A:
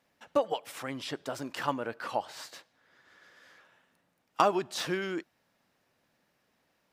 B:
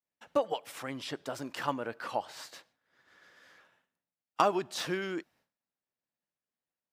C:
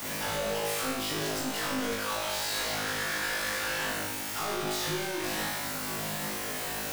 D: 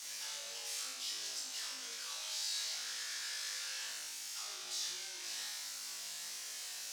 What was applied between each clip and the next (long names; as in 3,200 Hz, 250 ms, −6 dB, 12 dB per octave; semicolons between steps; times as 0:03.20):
downward expander −59 dBFS; level −1.5 dB
sign of each sample alone; flutter between parallel walls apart 3.3 metres, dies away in 0.82 s; multiband upward and downward compressor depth 40%
resonant band-pass 5,700 Hz, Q 1.6; level −1.5 dB